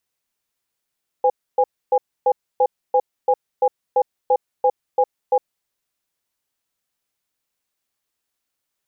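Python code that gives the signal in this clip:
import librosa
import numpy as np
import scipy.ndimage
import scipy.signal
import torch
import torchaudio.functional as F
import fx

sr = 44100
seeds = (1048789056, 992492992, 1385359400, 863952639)

y = fx.cadence(sr, length_s=4.36, low_hz=508.0, high_hz=818.0, on_s=0.06, off_s=0.28, level_db=-15.0)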